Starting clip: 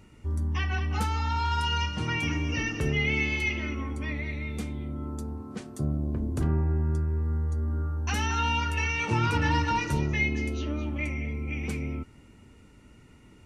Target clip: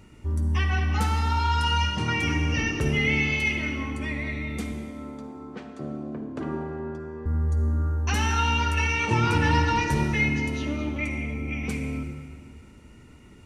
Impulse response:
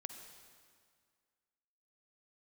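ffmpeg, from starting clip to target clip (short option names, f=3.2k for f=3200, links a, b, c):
-filter_complex "[0:a]asettb=1/sr,asplit=3[a][b][c];[a]atrim=end=4.724[d];[b]atrim=start=4.72:end=7.26,asetpts=PTS-STARTPTS,afade=t=in:d=0.004:c=qsin,afade=t=out:st=2.536:d=0.004:c=qsin,highpass=280,lowpass=3k[e];[c]atrim=start=7.256[f];[d][e]acrossfade=d=0.004:c1=hsin:c2=qsin[g];[g][f]acrossfade=d=0.004:c1=qsin:c2=hsin[h];[1:a]atrim=start_sample=2205[i];[h][i]afir=irnorm=-1:irlink=0,volume=7dB"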